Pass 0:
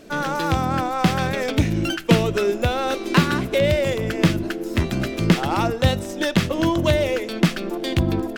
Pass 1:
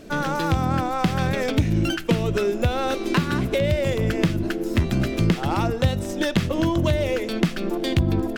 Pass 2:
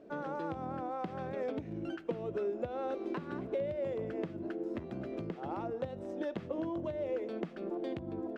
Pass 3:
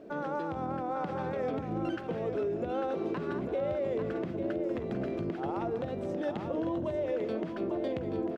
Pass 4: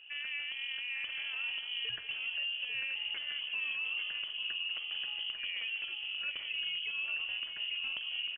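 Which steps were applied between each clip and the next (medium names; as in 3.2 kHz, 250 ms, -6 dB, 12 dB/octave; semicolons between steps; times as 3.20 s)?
compression 5:1, threshold -20 dBFS, peak gain reduction 10 dB; bass shelf 190 Hz +7.5 dB
compression, threshold -20 dBFS, peak gain reduction 7 dB; band-pass filter 510 Hz, Q 1; trim -8.5 dB
peak limiter -31.5 dBFS, peak gain reduction 9 dB; on a send: multi-tap echo 191/846 ms -15/-7 dB; on the sum: trim +6 dB
frequency inversion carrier 3.2 kHz; hum notches 50/100 Hz; trim -5 dB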